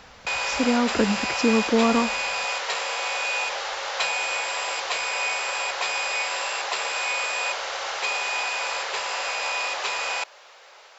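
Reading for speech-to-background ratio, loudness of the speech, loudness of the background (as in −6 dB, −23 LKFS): 2.0 dB, −23.5 LKFS, −25.5 LKFS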